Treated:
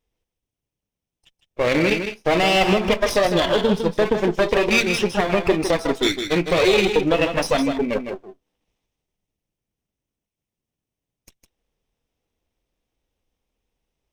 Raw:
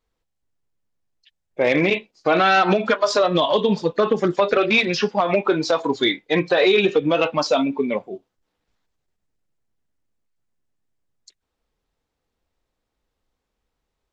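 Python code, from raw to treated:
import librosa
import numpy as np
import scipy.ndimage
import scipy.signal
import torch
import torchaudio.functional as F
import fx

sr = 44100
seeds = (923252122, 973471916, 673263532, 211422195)

p1 = fx.lower_of_two(x, sr, delay_ms=0.35)
y = p1 + fx.echo_single(p1, sr, ms=157, db=-7.5, dry=0)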